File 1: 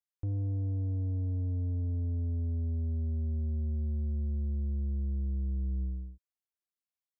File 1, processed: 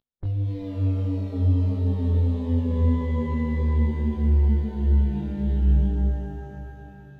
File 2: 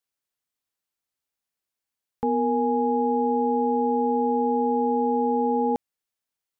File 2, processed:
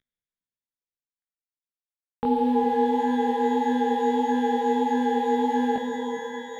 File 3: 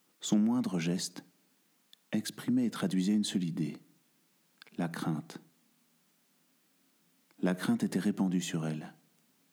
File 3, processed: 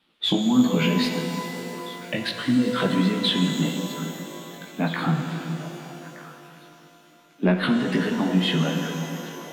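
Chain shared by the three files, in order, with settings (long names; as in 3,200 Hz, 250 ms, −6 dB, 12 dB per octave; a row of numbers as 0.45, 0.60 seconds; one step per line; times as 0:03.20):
variable-slope delta modulation 64 kbit/s
noise reduction from a noise print of the clip's start 10 dB
high shelf with overshoot 4,800 Hz −12 dB, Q 3
in parallel at +1.5 dB: downward compressor, threshold −35 dBFS
on the sum: chorus effect 1.6 Hz, delay 16 ms, depth 5.6 ms
on a send: echo through a band-pass that steps 407 ms, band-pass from 210 Hz, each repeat 1.4 octaves, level −8 dB
on the sum: reverb with rising layers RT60 3.3 s, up +12 semitones, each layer −8 dB, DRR 4.5 dB
loudness normalisation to −24 LKFS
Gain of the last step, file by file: +10.0, +0.5, +9.0 decibels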